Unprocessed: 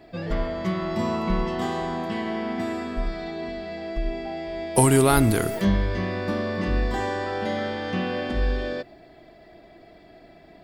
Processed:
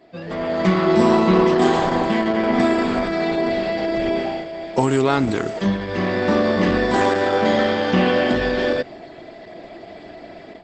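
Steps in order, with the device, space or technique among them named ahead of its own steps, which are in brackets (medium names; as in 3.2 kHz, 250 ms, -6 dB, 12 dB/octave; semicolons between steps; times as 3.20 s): 0.86–1.73 s: dynamic bell 370 Hz, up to +6 dB, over -45 dBFS, Q 5.2; video call (high-pass 160 Hz 12 dB/octave; level rider gain up to 14 dB; trim -1 dB; Opus 12 kbps 48 kHz)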